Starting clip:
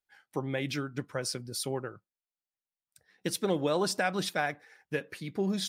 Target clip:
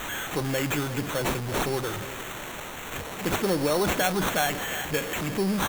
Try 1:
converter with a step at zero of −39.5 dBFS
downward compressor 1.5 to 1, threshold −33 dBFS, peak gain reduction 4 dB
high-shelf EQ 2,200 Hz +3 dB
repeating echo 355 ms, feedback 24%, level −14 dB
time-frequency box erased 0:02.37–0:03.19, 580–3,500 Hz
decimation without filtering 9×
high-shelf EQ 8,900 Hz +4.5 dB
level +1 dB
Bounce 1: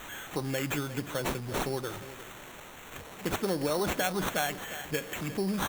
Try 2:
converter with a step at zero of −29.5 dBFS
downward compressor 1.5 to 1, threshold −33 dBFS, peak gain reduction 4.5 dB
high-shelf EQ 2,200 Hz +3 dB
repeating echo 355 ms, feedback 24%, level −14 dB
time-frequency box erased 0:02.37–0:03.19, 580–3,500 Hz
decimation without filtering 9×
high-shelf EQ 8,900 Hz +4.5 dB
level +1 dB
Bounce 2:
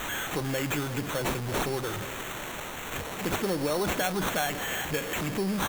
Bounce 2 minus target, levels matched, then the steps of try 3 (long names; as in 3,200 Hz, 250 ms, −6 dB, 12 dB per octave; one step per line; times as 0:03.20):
downward compressor: peak gain reduction +4.5 dB
converter with a step at zero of −29.5 dBFS
high-shelf EQ 2,200 Hz +3 dB
repeating echo 355 ms, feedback 24%, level −14 dB
time-frequency box erased 0:02.37–0:03.19, 580–3,500 Hz
decimation without filtering 9×
high-shelf EQ 8,900 Hz +4.5 dB
level +1 dB